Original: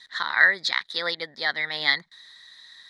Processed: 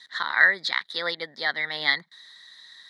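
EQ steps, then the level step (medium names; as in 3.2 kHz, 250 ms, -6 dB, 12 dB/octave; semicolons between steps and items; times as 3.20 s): high-pass 130 Hz 24 dB/octave; band-stop 2.5 kHz, Q 14; dynamic bell 6.4 kHz, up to -6 dB, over -41 dBFS, Q 1.3; 0.0 dB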